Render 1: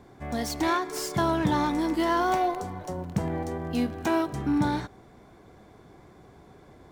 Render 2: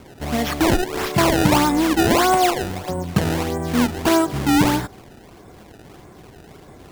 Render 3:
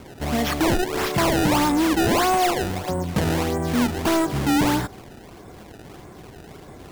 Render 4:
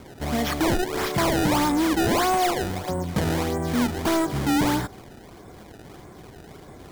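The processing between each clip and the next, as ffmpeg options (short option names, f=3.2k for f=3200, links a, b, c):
-af "acrusher=samples=23:mix=1:aa=0.000001:lfo=1:lforange=36.8:lforate=1.6,volume=8.5dB"
-af "asoftclip=type=tanh:threshold=-17dB,volume=1.5dB"
-af "bandreject=f=2.7k:w=15,volume=-2dB"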